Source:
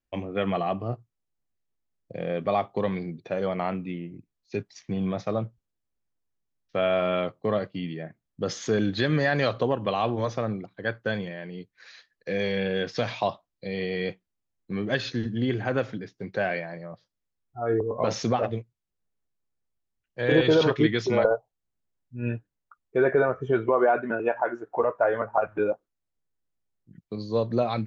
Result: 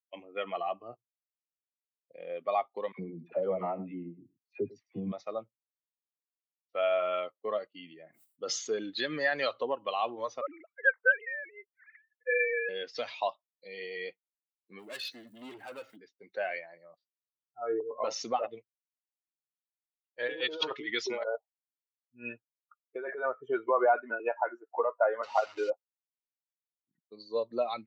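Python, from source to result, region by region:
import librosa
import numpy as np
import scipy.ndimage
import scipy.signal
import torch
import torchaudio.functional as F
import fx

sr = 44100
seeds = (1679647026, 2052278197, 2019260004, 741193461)

y = fx.chain(x, sr, fx.tilt_eq(slope=-4.5),
    fx.dispersion(late='lows', ms=70.0, hz=770.0),
    fx.echo_single(ms=103, db=-13.5), at=(2.92, 5.12))
y = fx.chain(y, sr, fx.peak_eq(hz=1800.0, db=-3.0, octaves=0.34),
    fx.sustainer(db_per_s=75.0), at=(7.68, 8.76))
y = fx.chain(y, sr, fx.sine_speech(),
    fx.curve_eq(hz=(420.0, 2100.0, 4500.0), db=(0, 9, -21)), at=(10.41, 12.69))
y = fx.dmg_crackle(y, sr, seeds[0], per_s=580.0, level_db=-49.0, at=(14.78, 15.95), fade=0.02)
y = fx.clip_hard(y, sr, threshold_db=-29.0, at=(14.78, 15.95), fade=0.02)
y = fx.chain(y, sr, fx.low_shelf(hz=430.0, db=-3.0),
    fx.over_compress(threshold_db=-26.0, ratio=-1.0), at=(18.57, 23.26))
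y = fx.chain(y, sr, fx.delta_mod(bps=32000, step_db=-30.5),
    fx.highpass(hz=41.0, slope=12),
    fx.gate_hold(open_db=-28.0, close_db=-34.0, hold_ms=71.0, range_db=-21, attack_ms=1.4, release_ms=100.0), at=(25.23, 25.7))
y = fx.bin_expand(y, sr, power=1.5)
y = scipy.signal.sosfilt(scipy.signal.butter(2, 500.0, 'highpass', fs=sr, output='sos'), y)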